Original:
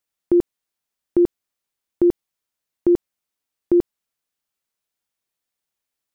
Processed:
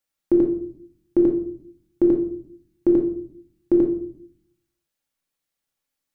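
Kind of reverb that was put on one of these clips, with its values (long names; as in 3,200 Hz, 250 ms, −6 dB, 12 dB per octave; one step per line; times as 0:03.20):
rectangular room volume 760 cubic metres, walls furnished, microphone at 2.3 metres
level −2 dB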